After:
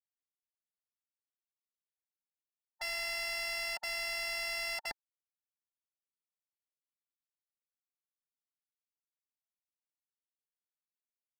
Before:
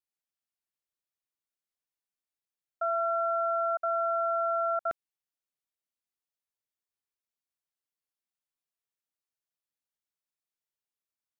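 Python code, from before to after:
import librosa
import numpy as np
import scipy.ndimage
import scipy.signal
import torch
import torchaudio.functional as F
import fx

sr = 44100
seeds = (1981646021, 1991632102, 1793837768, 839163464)

y = scipy.signal.medfilt(x, 25)
y = fx.formant_shift(y, sr, semitones=5)
y = y * librosa.db_to_amplitude(-5.5)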